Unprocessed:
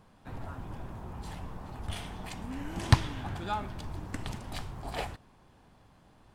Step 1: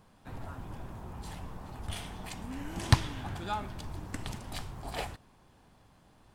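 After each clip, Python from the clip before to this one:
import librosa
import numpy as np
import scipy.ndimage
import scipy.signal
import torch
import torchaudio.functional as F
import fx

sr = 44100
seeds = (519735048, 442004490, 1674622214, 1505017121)

y = fx.high_shelf(x, sr, hz=4700.0, db=5.0)
y = y * 10.0 ** (-1.5 / 20.0)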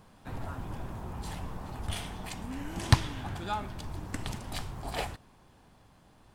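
y = fx.rider(x, sr, range_db=4, speed_s=2.0)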